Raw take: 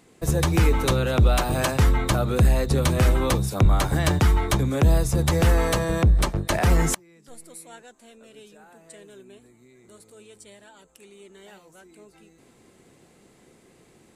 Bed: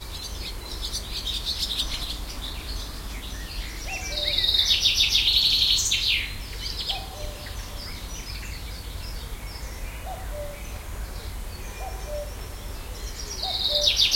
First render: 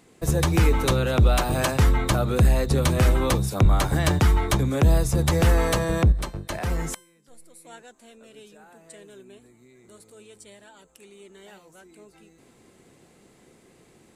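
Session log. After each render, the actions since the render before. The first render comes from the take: 6.12–7.65 s: feedback comb 520 Hz, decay 0.56 s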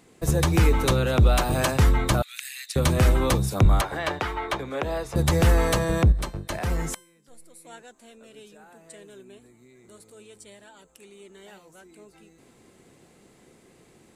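2.22–2.76 s: steep high-pass 1.9 kHz; 3.81–5.16 s: three-band isolator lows -18 dB, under 370 Hz, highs -15 dB, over 3.9 kHz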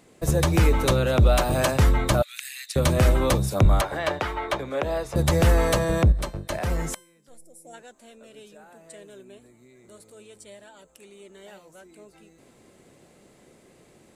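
7.38–7.74 s: time-frequency box 890–4900 Hz -16 dB; peaking EQ 590 Hz +7 dB 0.25 oct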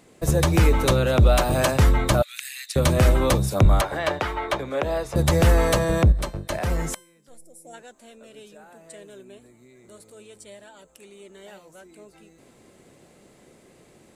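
trim +1.5 dB

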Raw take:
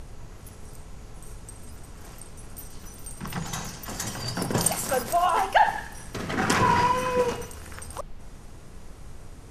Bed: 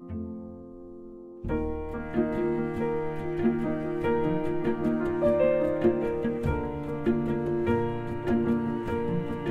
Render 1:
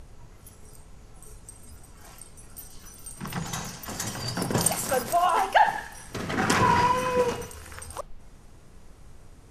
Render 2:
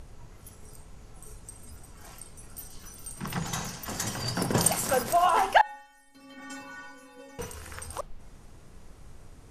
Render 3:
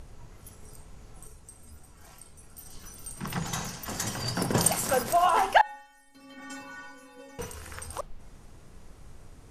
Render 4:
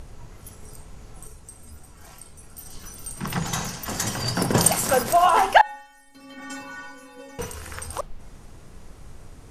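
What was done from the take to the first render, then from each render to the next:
noise print and reduce 6 dB
5.61–7.39 s: inharmonic resonator 270 Hz, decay 0.65 s, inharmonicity 0.008
1.27–2.66 s: feedback comb 75 Hz, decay 0.23 s
trim +5.5 dB

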